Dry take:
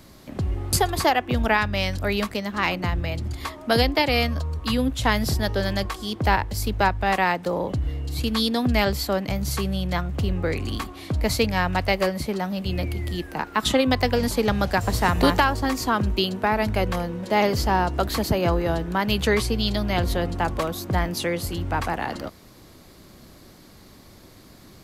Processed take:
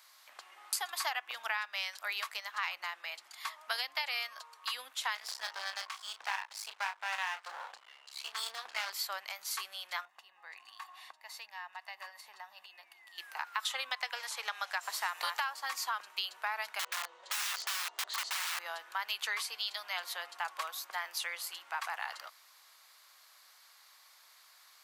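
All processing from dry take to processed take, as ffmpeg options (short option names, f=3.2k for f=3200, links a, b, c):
-filter_complex "[0:a]asettb=1/sr,asplit=3[a][b][c];[a]atrim=end=5.154[d];[b]atrim=start=5.15:end=8.9,asetpts=PTS-STARTPTS,afade=t=in:d=0.004:c=qsin,afade=t=out:st=3.746:d=0.004:c=qsin,lowpass=8.2k,asplit=2[e][f];[f]adelay=31,volume=-7dB[g];[e][g]amix=inputs=2:normalize=0,atrim=end_sample=165375,aeval=exprs='max(val(0),0)':c=same[h];[c]atrim=start=8.896[i];[d][h]acrossfade=d=0.004:c1=hsin:c2=qsin[j];[j][i]acrossfade=d=0.004:c1=qsin:c2=hsin,asettb=1/sr,asplit=3[k][l][m];[k]atrim=end=10.054[n];[l]atrim=start=10.05:end=13.18,asetpts=PTS-STARTPTS,afade=t=in:d=0.004:c=qsin,afade=t=out:st=3.126:d=0.004:c=qsin,highshelf=f=2.5k:g=-8.5,aecho=1:1:1.1:0.56,atrim=end_sample=138033,acompressor=threshold=-29dB:ratio=5:attack=3.2:release=140:knee=1:detection=peak[o];[m]atrim=start=13.176[p];[n][o]acrossfade=d=0.004:c1=hsin:c2=qsin[q];[q][p]acrossfade=d=0.004:c1=qsin:c2=hsin,asettb=1/sr,asplit=3[r][s][t];[r]atrim=end=13.894[u];[s]atrim=start=13.89:end=14.83,asetpts=PTS-STARTPTS,afade=t=in:d=0.004:c=qsin,afade=t=out:st=0.936:d=0.004:c=qsin,highpass=350,bandreject=f=4.7k:w=9.2,acrossover=split=9700[v][w];[w]acompressor=threshold=-56dB:ratio=4:attack=1:release=60[x];[v][x]amix=inputs=2:normalize=0[y];[t]atrim=start=14.826[z];[u][y]acrossfade=d=0.004:c1=hsin:c2=qsin[aa];[aa][z]acrossfade=d=0.004:c1=qsin:c2=hsin,asettb=1/sr,asplit=3[ab][ac][ad];[ab]atrim=end=16.794[ae];[ac]atrim=start=16.79:end=18.59,asetpts=PTS-STARTPTS,afade=t=in:d=0.004:c=qsin,afade=t=out:st=1.796:d=0.004:c=qsin,highpass=f=140:w=0.5412,highpass=f=140:w=1.3066,equalizer=f=240:t=q:w=4:g=-6,equalizer=f=410:t=q:w=4:g=10,equalizer=f=630:t=q:w=4:g=5,equalizer=f=1.6k:t=q:w=4:g=-7,equalizer=f=2.4k:t=q:w=4:g=-7,equalizer=f=5.3k:t=q:w=4:g=-6,lowpass=f=7k:w=0.5412,lowpass=f=7k:w=1.3066,aeval=exprs='(mod(10.6*val(0)+1,2)-1)/10.6':c=same[af];[ad]atrim=start=18.586[ag];[ae][af]acrossfade=d=0.004:c1=hsin:c2=qsin[ah];[ah][ag]acrossfade=d=0.004:c1=qsin:c2=hsin,highpass=f=970:w=0.5412,highpass=f=970:w=1.3066,acompressor=threshold=-25dB:ratio=5,volume=-6dB"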